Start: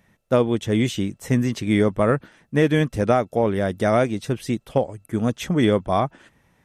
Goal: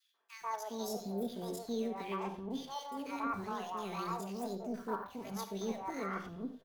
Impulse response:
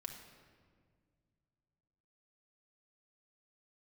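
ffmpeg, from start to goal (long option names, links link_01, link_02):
-filter_complex "[0:a]adynamicequalizer=threshold=0.00794:dfrequency=1700:dqfactor=2.5:tfrequency=1700:tqfactor=2.5:attack=5:release=100:ratio=0.375:range=2:mode=cutabove:tftype=bell,areverse,acompressor=threshold=-29dB:ratio=6,areverse,asetrate=80880,aresample=44100,atempo=0.545254,asplit=2[link_01][link_02];[link_02]acrusher=bits=6:mix=0:aa=0.000001,volume=-12dB[link_03];[link_01][link_03]amix=inputs=2:normalize=0,acrossover=split=600|2000[link_04][link_05][link_06];[link_05]adelay=140[link_07];[link_04]adelay=410[link_08];[link_08][link_07][link_06]amix=inputs=3:normalize=0[link_09];[1:a]atrim=start_sample=2205,afade=type=out:start_time=0.16:duration=0.01,atrim=end_sample=7497[link_10];[link_09][link_10]afir=irnorm=-1:irlink=0,volume=-4dB"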